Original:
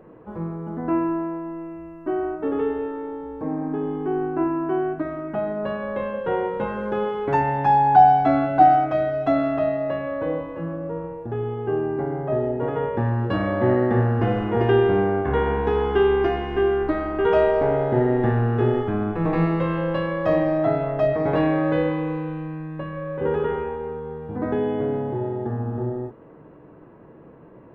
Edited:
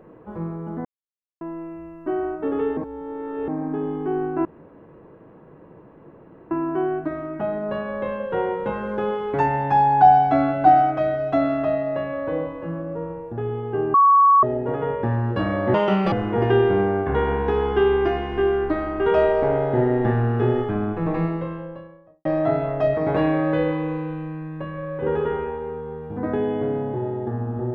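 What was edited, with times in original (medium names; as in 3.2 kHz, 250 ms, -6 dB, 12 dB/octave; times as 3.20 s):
0.85–1.41 s: mute
2.77–3.48 s: reverse
4.45 s: insert room tone 2.06 s
11.88–12.37 s: bleep 1.12 kHz -10.5 dBFS
13.68–14.31 s: speed 165%
18.89–20.44 s: studio fade out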